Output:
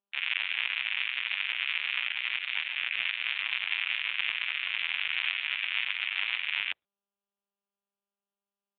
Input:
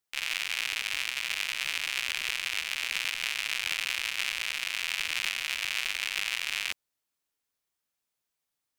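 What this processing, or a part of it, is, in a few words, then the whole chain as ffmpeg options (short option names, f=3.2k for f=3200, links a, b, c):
mobile call with aggressive noise cancelling: -af "highpass=100,afftdn=nr=28:nf=-47,volume=3dB" -ar 8000 -c:a libopencore_amrnb -b:a 10200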